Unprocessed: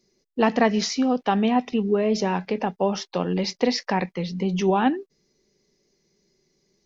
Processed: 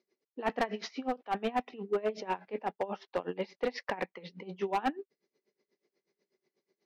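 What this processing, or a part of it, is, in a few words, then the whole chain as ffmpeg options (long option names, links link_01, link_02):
helicopter radio: -af "highpass=370,lowpass=2600,aeval=exprs='val(0)*pow(10,-21*(0.5-0.5*cos(2*PI*8.2*n/s))/20)':channel_layout=same,asoftclip=type=hard:threshold=-22dB,volume=-1.5dB"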